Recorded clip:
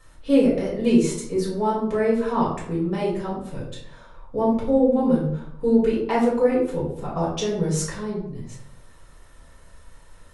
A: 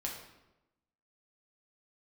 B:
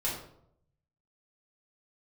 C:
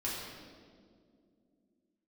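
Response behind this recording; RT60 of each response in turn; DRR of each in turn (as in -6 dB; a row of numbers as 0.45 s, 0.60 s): B; 0.95 s, 0.70 s, 2.3 s; -2.0 dB, -7.0 dB, -7.0 dB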